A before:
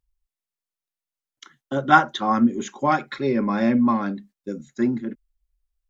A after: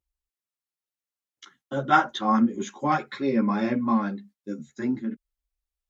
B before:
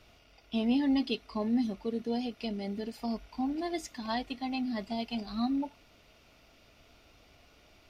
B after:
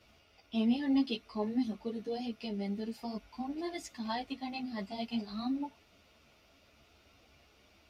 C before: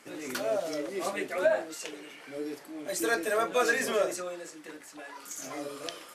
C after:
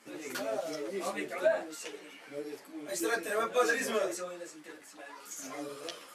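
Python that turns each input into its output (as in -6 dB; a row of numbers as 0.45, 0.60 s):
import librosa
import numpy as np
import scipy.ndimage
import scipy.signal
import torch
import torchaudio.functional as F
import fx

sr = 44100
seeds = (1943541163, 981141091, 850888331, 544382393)

y = scipy.signal.sosfilt(scipy.signal.butter(2, 42.0, 'highpass', fs=sr, output='sos'), x)
y = fx.ensemble(y, sr)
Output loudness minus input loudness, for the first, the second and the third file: -3.5, -3.0, -3.0 LU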